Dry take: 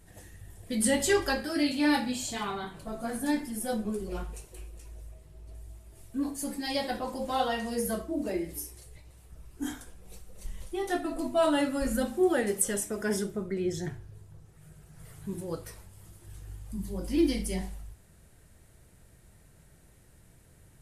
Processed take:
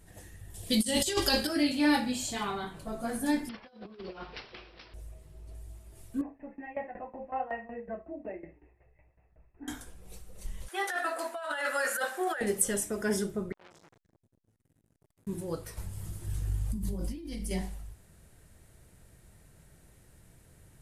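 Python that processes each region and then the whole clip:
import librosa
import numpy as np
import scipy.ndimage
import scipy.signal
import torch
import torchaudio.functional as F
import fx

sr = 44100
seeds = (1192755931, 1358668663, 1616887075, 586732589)

y = fx.chain(x, sr, fx.high_shelf_res(hz=2500.0, db=8.0, q=1.5),
    fx.over_compress(threshold_db=-26.0, ratio=-0.5), at=(0.54, 1.47))
y = fx.chain(y, sr, fx.highpass(hz=530.0, slope=6),
    fx.over_compress(threshold_db=-44.0, ratio=-0.5),
    fx.resample_bad(factor=4, down='none', up='filtered'), at=(3.49, 4.94))
y = fx.chain(y, sr, fx.cheby_ripple(hz=2700.0, ripple_db=9),
    fx.tremolo_shape(shape='saw_down', hz=5.4, depth_pct=85), at=(6.21, 9.68))
y = fx.chain(y, sr, fx.highpass(hz=520.0, slope=24),
    fx.peak_eq(hz=1600.0, db=13.0, octaves=0.69),
    fx.over_compress(threshold_db=-32.0, ratio=-1.0), at=(10.68, 12.41))
y = fx.chain(y, sr, fx.comb_fb(f0_hz=110.0, decay_s=0.7, harmonics='all', damping=0.0, mix_pct=90),
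    fx.transformer_sat(knee_hz=2900.0), at=(13.52, 15.27))
y = fx.chain(y, sr, fx.bass_treble(bass_db=7, treble_db=2),
    fx.over_compress(threshold_db=-34.0, ratio=-1.0), at=(15.77, 17.51))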